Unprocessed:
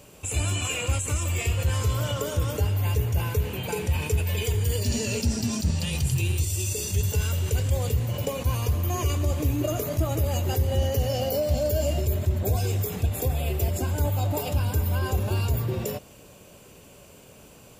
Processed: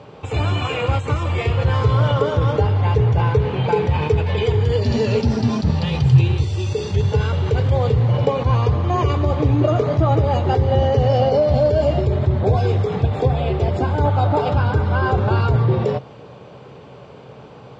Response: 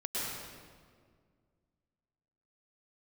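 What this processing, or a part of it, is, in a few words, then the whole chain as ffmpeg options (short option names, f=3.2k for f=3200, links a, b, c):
guitar cabinet: -filter_complex "[0:a]asettb=1/sr,asplit=3[a][b][c];[a]atrim=end=14.054[d];[b]atrim=start=14.05:end=15.61,asetpts=PTS-STARTPTS,afade=t=in:d=0.004:c=qsin,afade=t=out:st=1.556:d=0.004:c=qsin,equalizer=f=1.4k:w=5.7:g=9[e];[c]atrim=start=15.606[f];[d][e]acrossfade=d=0.004:c1=hsin:c2=qsin[g];[g][f]acrossfade=d=0.004:c1=qsin:c2=hsin,highpass=86,equalizer=f=130:t=q:w=4:g=9,equalizer=f=450:t=q:w=4:g=6,equalizer=f=830:t=q:w=4:g=8,equalizer=f=1.2k:t=q:w=4:g=5,equalizer=f=2.7k:t=q:w=4:g=-7,lowpass=f=3.9k:w=0.5412,lowpass=f=3.9k:w=1.3066,volume=7.5dB"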